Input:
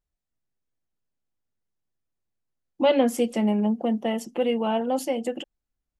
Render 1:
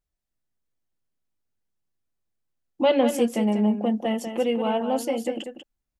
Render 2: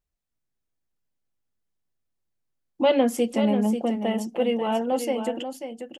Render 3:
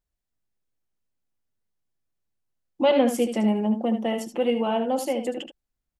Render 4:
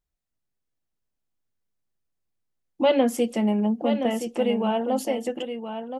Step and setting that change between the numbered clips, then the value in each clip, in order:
delay, time: 192 ms, 539 ms, 75 ms, 1021 ms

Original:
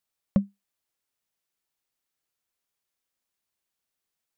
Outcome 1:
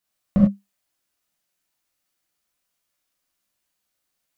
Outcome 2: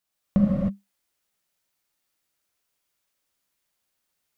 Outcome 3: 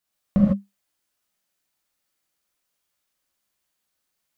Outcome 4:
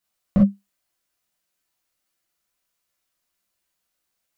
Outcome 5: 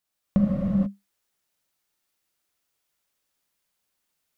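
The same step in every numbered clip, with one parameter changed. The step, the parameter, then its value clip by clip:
gated-style reverb, gate: 120 ms, 340 ms, 180 ms, 80 ms, 510 ms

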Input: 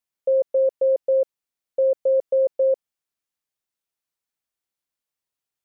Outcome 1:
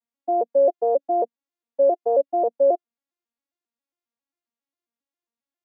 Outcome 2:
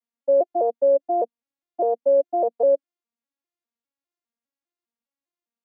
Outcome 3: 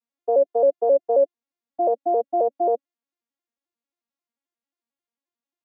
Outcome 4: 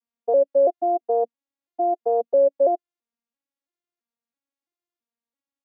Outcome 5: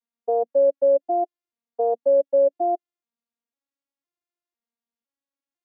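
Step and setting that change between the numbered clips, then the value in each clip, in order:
vocoder on a broken chord, a note every: 135 ms, 202 ms, 89 ms, 333 ms, 504 ms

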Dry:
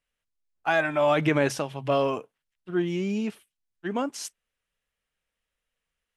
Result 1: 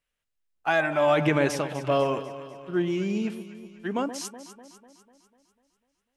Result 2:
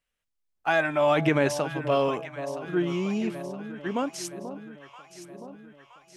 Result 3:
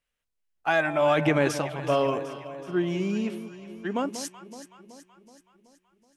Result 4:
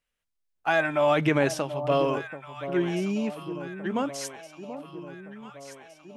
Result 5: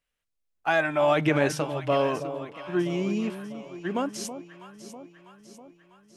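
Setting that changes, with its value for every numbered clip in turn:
echo whose repeats swap between lows and highs, time: 124 ms, 485 ms, 188 ms, 733 ms, 324 ms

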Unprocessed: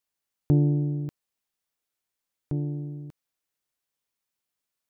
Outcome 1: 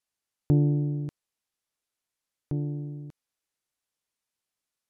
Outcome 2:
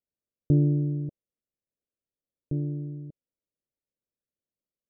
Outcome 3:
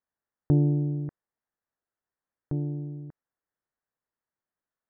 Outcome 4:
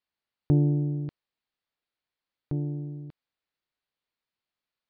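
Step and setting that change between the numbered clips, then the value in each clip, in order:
elliptic low-pass, frequency: 12 kHz, 580 Hz, 1.8 kHz, 4.5 kHz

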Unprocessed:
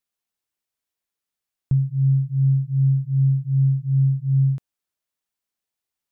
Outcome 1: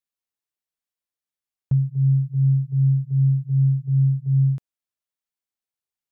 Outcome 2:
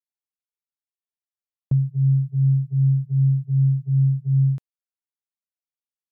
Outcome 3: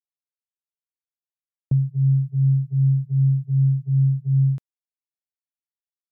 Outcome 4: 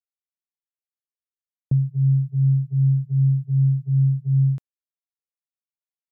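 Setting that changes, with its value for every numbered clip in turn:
gate, range: -7 dB, -19 dB, -33 dB, -57 dB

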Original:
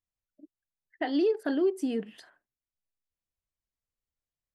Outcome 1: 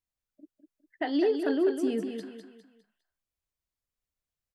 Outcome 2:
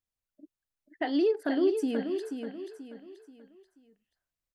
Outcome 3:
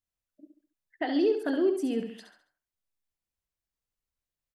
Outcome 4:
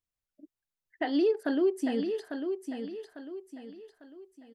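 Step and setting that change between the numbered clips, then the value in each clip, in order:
feedback delay, time: 203 ms, 483 ms, 69 ms, 849 ms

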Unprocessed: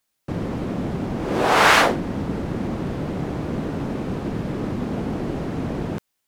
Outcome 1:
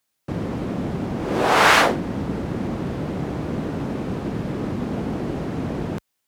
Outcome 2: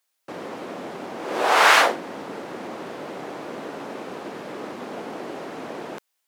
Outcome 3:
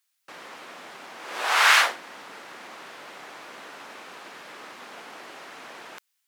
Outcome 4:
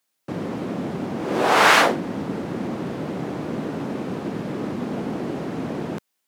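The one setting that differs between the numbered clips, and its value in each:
high-pass, cutoff frequency: 43 Hz, 480 Hz, 1.3 kHz, 170 Hz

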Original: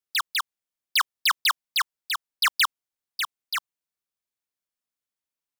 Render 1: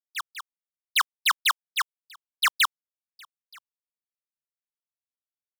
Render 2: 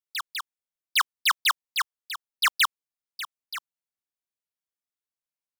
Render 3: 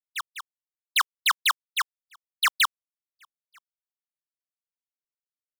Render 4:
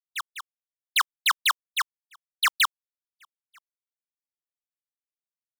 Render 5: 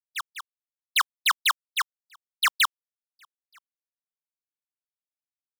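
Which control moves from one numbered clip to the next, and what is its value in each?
gate, range: -21 dB, -7 dB, -47 dB, -60 dB, -34 dB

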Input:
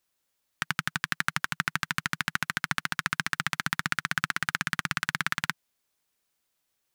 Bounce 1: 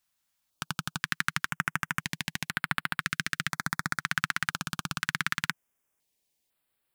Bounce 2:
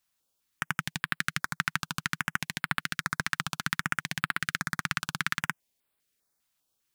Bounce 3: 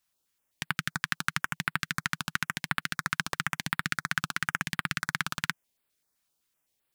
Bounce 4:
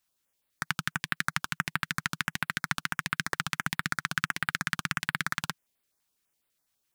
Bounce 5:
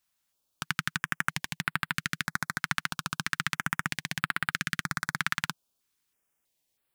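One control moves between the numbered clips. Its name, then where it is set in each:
step-sequenced notch, rate: 2 Hz, 5 Hz, 7.8 Hz, 12 Hz, 3.1 Hz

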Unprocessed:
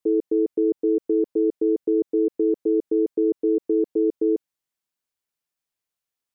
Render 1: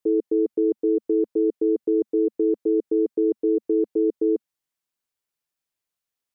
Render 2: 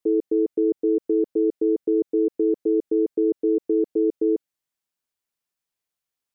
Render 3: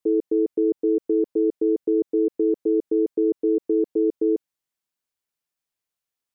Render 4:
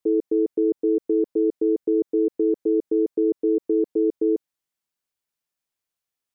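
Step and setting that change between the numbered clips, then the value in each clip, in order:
dynamic bell, frequency: 220 Hz, 1 kHz, 8.8 kHz, 2.8 kHz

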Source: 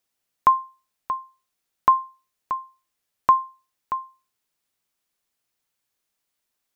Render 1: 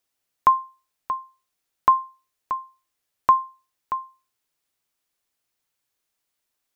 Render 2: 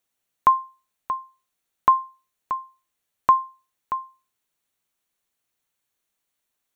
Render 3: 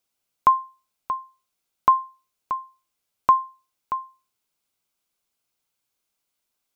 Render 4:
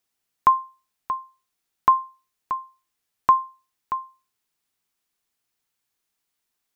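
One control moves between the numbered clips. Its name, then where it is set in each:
band-stop, frequency: 200 Hz, 5 kHz, 1.8 kHz, 570 Hz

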